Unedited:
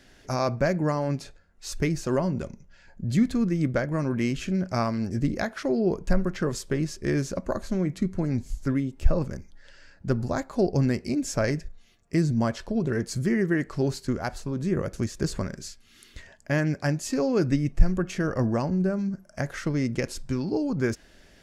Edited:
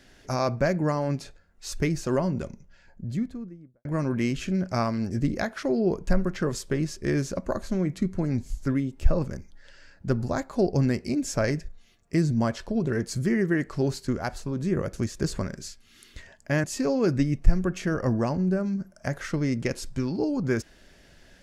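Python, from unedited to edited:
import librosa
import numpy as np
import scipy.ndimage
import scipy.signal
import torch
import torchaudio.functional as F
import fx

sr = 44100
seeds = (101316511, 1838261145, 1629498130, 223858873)

y = fx.studio_fade_out(x, sr, start_s=2.48, length_s=1.37)
y = fx.edit(y, sr, fx.cut(start_s=16.64, length_s=0.33), tone=tone)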